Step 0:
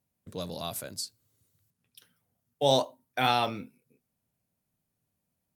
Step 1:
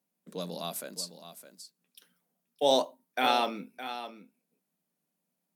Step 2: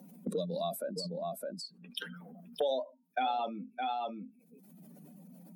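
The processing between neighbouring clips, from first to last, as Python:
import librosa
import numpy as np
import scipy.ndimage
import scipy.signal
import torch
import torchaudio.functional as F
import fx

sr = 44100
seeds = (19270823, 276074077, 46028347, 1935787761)

y1 = scipy.signal.sosfilt(scipy.signal.ellip(4, 1.0, 40, 170.0, 'highpass', fs=sr, output='sos'), x)
y1 = y1 + 10.0 ** (-12.0 / 20.0) * np.pad(y1, (int(612 * sr / 1000.0), 0))[:len(y1)]
y2 = fx.spec_expand(y1, sr, power=2.2)
y2 = fx.band_squash(y2, sr, depth_pct=100)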